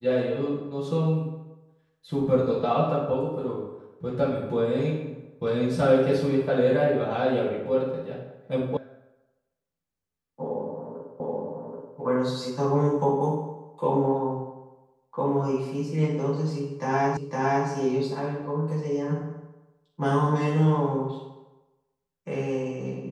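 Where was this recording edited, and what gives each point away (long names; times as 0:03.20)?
0:08.77: cut off before it has died away
0:11.20: the same again, the last 0.78 s
0:17.17: the same again, the last 0.51 s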